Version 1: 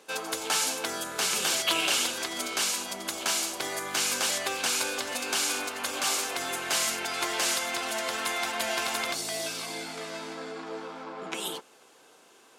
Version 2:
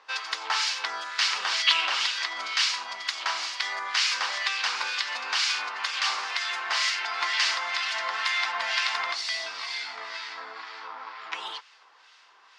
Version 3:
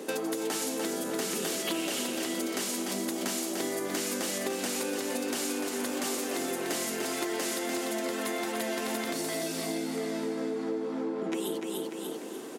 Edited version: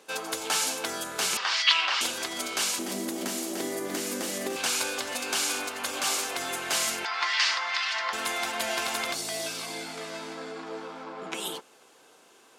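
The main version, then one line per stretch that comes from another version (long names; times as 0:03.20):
1
0:01.37–0:02.01: punch in from 2
0:02.79–0:04.56: punch in from 3
0:07.05–0:08.13: punch in from 2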